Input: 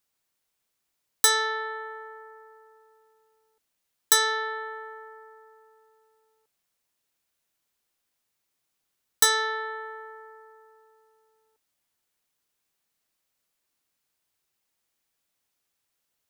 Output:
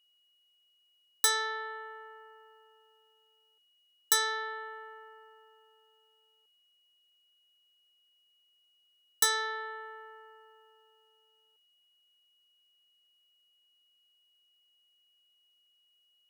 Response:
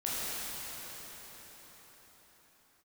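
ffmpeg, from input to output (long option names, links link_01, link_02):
-af "lowshelf=frequency=210:gain=-9.5,aeval=exprs='val(0)+0.000794*sin(2*PI*2900*n/s)':channel_layout=same,volume=-6dB"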